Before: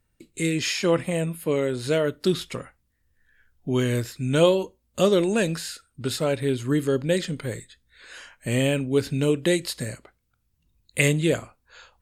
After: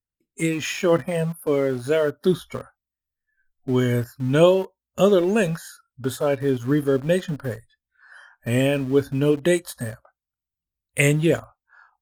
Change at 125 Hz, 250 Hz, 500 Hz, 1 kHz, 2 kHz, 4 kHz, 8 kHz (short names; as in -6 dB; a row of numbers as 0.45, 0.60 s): +2.0, +2.0, +3.0, +3.0, +1.0, -3.0, -1.5 dB